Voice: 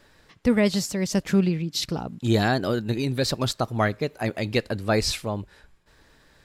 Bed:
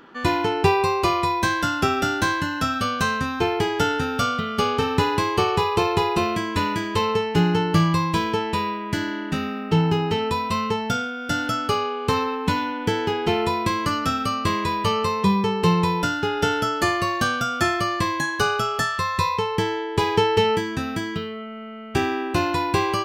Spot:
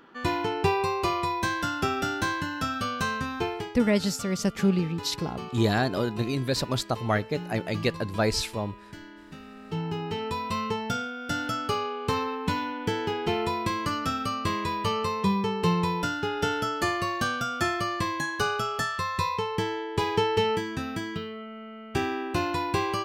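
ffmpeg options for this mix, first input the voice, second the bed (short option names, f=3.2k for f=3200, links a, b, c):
-filter_complex "[0:a]adelay=3300,volume=-2.5dB[a];[1:a]volume=7.5dB,afade=t=out:st=3.38:d=0.37:silence=0.223872,afade=t=in:st=9.43:d=1.16:silence=0.211349[b];[a][b]amix=inputs=2:normalize=0"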